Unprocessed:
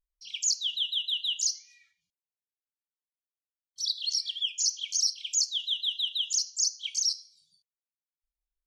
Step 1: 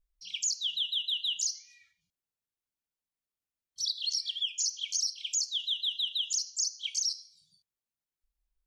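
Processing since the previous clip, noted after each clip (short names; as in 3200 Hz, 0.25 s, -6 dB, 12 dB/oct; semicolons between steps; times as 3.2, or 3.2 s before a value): low shelf 260 Hz +9.5 dB; compressor, threshold -27 dBFS, peak gain reduction 6.5 dB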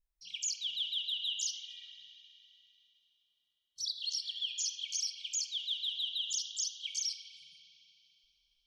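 spring tank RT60 3.2 s, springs 35/54 ms, chirp 25 ms, DRR 3 dB; gain -5 dB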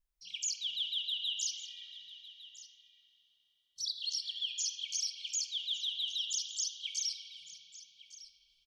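echo 1.156 s -17 dB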